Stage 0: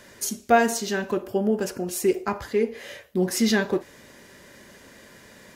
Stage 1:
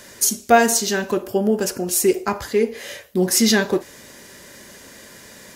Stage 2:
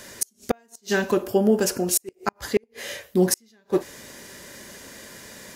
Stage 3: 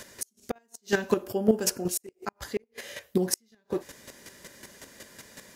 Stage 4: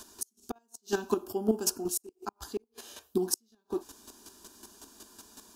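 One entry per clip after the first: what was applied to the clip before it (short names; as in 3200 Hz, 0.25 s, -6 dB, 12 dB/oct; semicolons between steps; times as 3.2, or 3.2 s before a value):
tone controls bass -1 dB, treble +7 dB; gain +4.5 dB
flipped gate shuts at -8 dBFS, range -41 dB
chopper 5.4 Hz, depth 65%, duty 15%
fixed phaser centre 540 Hz, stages 6; gain -1 dB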